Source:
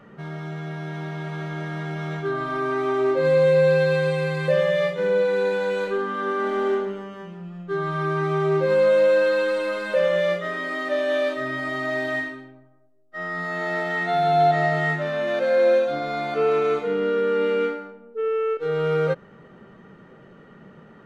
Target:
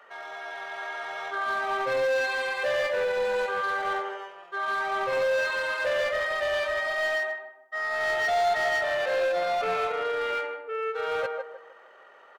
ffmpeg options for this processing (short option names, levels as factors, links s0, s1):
-filter_complex "[0:a]highpass=f=610:w=0.5412,highpass=f=610:w=1.3066,asplit=2[s0][s1];[s1]adelay=14,volume=0.224[s2];[s0][s2]amix=inputs=2:normalize=0,atempo=1.7,asplit=2[s3][s4];[s4]adelay=155,lowpass=f=1100:p=1,volume=0.708,asplit=2[s5][s6];[s6]adelay=155,lowpass=f=1100:p=1,volume=0.37,asplit=2[s7][s8];[s8]adelay=155,lowpass=f=1100:p=1,volume=0.37,asplit=2[s9][s10];[s10]adelay=155,lowpass=f=1100:p=1,volume=0.37,asplit=2[s11][s12];[s12]adelay=155,lowpass=f=1100:p=1,volume=0.37[s13];[s3][s5][s7][s9][s11][s13]amix=inputs=6:normalize=0,asplit=2[s14][s15];[s15]aeval=exprs='0.0501*(abs(mod(val(0)/0.0501+3,4)-2)-1)':c=same,volume=0.596[s16];[s14][s16]amix=inputs=2:normalize=0,volume=0.75"